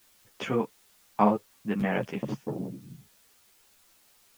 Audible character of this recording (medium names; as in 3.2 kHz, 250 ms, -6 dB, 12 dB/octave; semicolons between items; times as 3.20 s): tremolo triangle 1.1 Hz, depth 45%; a quantiser's noise floor 10-bit, dither triangular; a shimmering, thickened sound